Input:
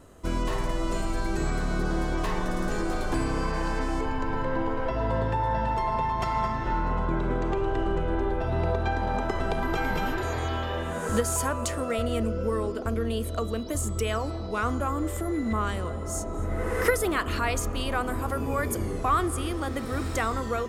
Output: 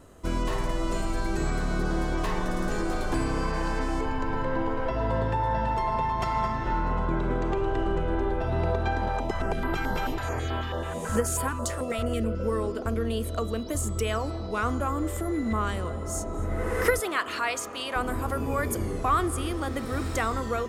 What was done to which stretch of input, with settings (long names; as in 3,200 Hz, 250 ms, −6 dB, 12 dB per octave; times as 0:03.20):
0:09.09–0:12.40: notch on a step sequencer 9.2 Hz 230–6,100 Hz
0:17.00–0:17.96: meter weighting curve A